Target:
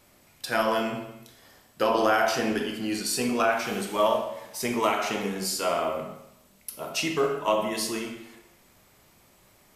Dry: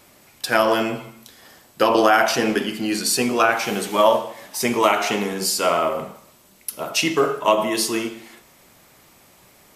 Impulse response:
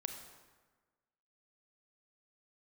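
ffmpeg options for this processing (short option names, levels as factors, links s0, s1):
-filter_complex "[0:a]lowshelf=f=91:g=8.5[s0];[1:a]atrim=start_sample=2205,asetrate=79380,aresample=44100[s1];[s0][s1]afir=irnorm=-1:irlink=0,volume=0.891"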